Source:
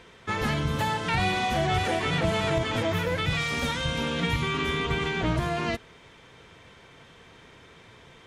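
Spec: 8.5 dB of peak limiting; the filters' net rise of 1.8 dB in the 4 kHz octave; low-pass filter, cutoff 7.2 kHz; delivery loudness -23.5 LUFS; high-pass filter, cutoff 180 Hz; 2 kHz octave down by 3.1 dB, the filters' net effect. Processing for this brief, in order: high-pass 180 Hz; low-pass 7.2 kHz; peaking EQ 2 kHz -5 dB; peaking EQ 4 kHz +4.5 dB; trim +8.5 dB; peak limiter -15.5 dBFS

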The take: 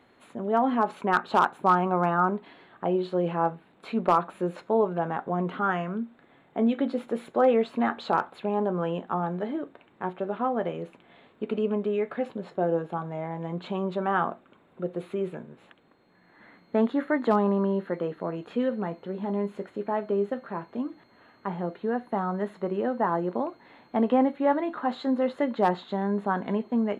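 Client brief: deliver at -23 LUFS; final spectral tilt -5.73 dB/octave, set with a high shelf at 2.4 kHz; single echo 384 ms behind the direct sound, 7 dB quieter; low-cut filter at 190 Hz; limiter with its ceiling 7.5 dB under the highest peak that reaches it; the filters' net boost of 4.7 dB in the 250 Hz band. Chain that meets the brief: high-pass 190 Hz; peaking EQ 250 Hz +7.5 dB; treble shelf 2.4 kHz +8.5 dB; peak limiter -14 dBFS; delay 384 ms -7 dB; trim +3 dB

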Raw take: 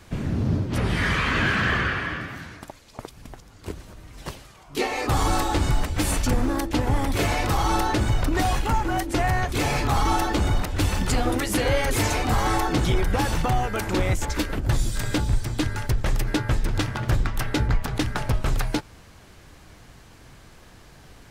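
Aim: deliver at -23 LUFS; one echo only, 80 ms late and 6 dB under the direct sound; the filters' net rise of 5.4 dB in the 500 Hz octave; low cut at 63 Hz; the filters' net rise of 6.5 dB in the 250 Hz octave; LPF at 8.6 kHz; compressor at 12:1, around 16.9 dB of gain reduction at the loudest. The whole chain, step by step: high-pass 63 Hz; low-pass 8.6 kHz; peaking EQ 250 Hz +7 dB; peaking EQ 500 Hz +4.5 dB; compression 12:1, threshold -32 dBFS; delay 80 ms -6 dB; trim +13 dB

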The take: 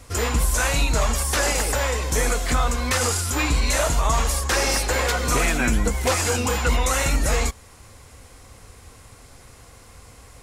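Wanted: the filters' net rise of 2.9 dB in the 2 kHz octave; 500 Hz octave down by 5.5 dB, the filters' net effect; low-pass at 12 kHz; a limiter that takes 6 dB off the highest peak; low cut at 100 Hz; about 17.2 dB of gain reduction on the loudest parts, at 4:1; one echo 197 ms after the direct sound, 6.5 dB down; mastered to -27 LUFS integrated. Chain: high-pass 100 Hz; low-pass 12 kHz; peaking EQ 500 Hz -6.5 dB; peaking EQ 2 kHz +4 dB; compression 4:1, threshold -40 dBFS; peak limiter -31 dBFS; delay 197 ms -6.5 dB; trim +13 dB

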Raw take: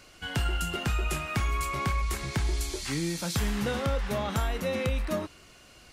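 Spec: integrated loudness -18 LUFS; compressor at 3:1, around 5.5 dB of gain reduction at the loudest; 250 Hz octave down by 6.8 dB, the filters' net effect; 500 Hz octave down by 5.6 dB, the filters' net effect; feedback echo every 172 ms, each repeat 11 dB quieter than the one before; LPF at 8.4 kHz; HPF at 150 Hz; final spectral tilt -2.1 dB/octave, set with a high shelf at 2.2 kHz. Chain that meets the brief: high-pass 150 Hz; low-pass 8.4 kHz; peaking EQ 250 Hz -7 dB; peaking EQ 500 Hz -5.5 dB; treble shelf 2.2 kHz +6 dB; compression 3:1, threshold -35 dBFS; feedback delay 172 ms, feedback 28%, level -11 dB; trim +18 dB

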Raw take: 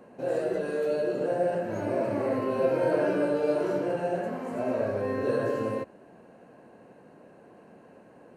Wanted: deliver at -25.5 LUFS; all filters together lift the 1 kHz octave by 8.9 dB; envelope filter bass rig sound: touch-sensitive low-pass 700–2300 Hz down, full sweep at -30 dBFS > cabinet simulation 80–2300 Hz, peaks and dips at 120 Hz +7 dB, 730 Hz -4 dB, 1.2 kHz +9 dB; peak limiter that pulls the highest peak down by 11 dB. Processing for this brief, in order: peaking EQ 1 kHz +9 dB; peak limiter -22 dBFS; touch-sensitive low-pass 700–2300 Hz down, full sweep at -30 dBFS; cabinet simulation 80–2300 Hz, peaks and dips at 120 Hz +7 dB, 730 Hz -4 dB, 1.2 kHz +9 dB; trim -1.5 dB

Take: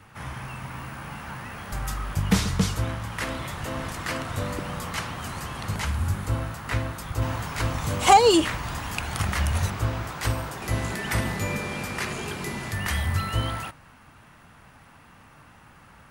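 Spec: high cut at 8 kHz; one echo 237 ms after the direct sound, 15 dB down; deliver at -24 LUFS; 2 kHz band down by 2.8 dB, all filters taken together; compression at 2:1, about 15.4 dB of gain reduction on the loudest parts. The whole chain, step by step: low-pass 8 kHz; peaking EQ 2 kHz -3.5 dB; compression 2:1, threshold -40 dBFS; delay 237 ms -15 dB; trim +13.5 dB

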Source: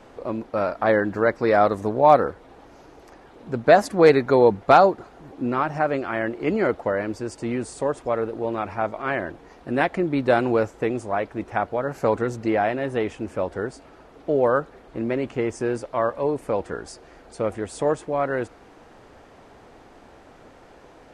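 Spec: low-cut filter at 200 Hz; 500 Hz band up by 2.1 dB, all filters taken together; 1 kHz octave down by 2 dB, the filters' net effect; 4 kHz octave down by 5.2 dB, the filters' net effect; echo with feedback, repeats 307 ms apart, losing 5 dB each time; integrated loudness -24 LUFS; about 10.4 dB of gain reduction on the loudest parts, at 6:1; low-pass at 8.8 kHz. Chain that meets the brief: high-pass 200 Hz; low-pass 8.8 kHz; peaking EQ 500 Hz +4 dB; peaking EQ 1 kHz -5 dB; peaking EQ 4 kHz -6 dB; compression 6:1, threshold -19 dBFS; feedback delay 307 ms, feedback 56%, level -5 dB; trim +1 dB

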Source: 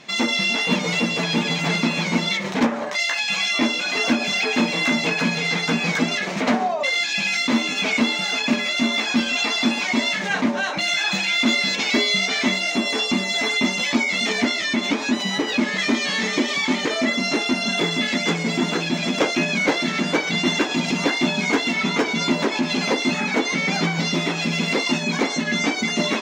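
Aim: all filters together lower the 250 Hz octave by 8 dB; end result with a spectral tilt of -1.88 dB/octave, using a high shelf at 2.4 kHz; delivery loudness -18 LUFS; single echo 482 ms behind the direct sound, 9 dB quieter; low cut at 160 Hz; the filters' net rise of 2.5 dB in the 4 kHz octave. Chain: high-pass 160 Hz; peaking EQ 250 Hz -8.5 dB; treble shelf 2.4 kHz -3.5 dB; peaking EQ 4 kHz +6 dB; delay 482 ms -9 dB; trim +2 dB

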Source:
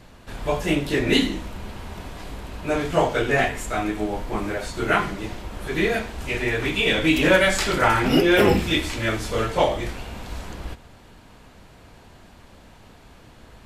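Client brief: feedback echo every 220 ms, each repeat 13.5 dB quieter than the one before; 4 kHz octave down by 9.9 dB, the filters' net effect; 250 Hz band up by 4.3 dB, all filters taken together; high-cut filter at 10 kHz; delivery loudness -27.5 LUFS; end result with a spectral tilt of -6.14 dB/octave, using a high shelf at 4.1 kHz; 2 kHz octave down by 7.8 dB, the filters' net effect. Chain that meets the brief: low-pass 10 kHz; peaking EQ 250 Hz +6 dB; peaking EQ 2 kHz -7.5 dB; peaking EQ 4 kHz -8.5 dB; treble shelf 4.1 kHz -3 dB; feedback delay 220 ms, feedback 21%, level -13.5 dB; trim -6 dB

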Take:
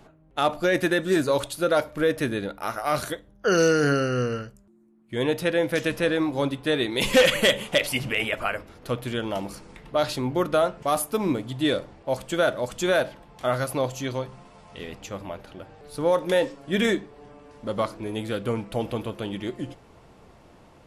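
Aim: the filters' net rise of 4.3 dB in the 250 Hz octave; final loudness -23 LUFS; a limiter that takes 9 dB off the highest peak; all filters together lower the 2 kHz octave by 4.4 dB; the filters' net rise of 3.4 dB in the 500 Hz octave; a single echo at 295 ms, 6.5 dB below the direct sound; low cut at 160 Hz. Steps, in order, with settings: high-pass 160 Hz; peaking EQ 250 Hz +5.5 dB; peaking EQ 500 Hz +3 dB; peaking EQ 2 kHz -6 dB; peak limiter -14.5 dBFS; delay 295 ms -6.5 dB; trim +2.5 dB

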